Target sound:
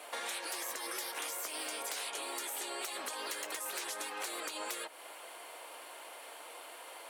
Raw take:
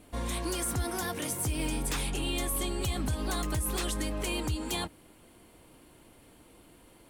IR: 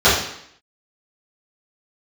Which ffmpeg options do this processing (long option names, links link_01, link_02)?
-af "highpass=frequency=590:width=0.5412,highpass=frequency=590:width=1.3066,afftfilt=real='re*lt(hypot(re,im),0.0282)':imag='im*lt(hypot(re,im),0.0282)':win_size=1024:overlap=0.75,highshelf=frequency=4200:gain=-5.5,acompressor=threshold=-52dB:ratio=5,volume=14dB"